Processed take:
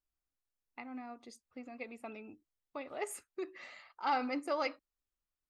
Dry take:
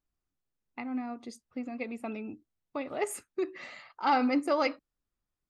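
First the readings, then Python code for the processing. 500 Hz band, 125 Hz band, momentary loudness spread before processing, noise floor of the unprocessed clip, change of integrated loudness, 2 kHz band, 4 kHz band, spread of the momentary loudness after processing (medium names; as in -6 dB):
-7.5 dB, under -10 dB, 18 LU, under -85 dBFS, -7.0 dB, -5.5 dB, -5.5 dB, 18 LU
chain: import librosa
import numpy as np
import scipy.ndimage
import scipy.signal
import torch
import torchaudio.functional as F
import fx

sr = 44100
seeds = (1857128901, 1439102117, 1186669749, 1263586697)

y = fx.peak_eq(x, sr, hz=170.0, db=-8.0, octaves=1.9)
y = y * 10.0 ** (-5.5 / 20.0)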